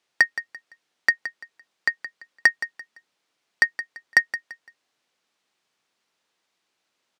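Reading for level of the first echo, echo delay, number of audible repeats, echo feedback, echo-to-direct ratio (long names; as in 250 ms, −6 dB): −13.0 dB, 170 ms, 2, 28%, −12.5 dB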